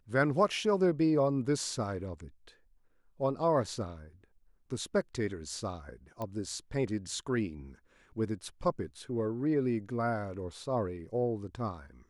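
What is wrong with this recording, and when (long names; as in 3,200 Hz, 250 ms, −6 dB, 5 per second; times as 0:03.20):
0:06.22: click −24 dBFS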